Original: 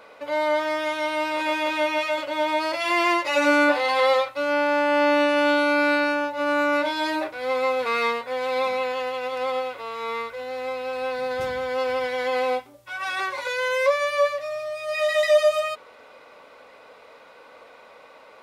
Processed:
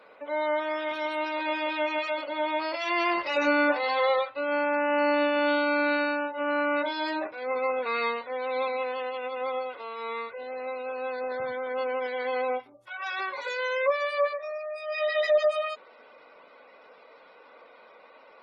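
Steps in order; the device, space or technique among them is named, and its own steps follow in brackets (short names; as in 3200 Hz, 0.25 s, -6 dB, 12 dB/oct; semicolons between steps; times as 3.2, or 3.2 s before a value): noise-suppressed video call (HPF 140 Hz 12 dB/oct; spectral gate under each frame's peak -25 dB strong; gain -4.5 dB; Opus 16 kbps 48000 Hz)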